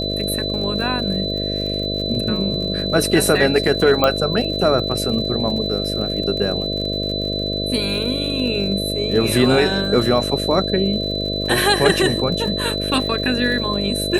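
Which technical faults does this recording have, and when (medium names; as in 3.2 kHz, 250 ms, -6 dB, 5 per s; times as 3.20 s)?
buzz 50 Hz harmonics 13 -25 dBFS
crackle 68 per s -28 dBFS
whine 4 kHz -24 dBFS
4.04 s: pop -3 dBFS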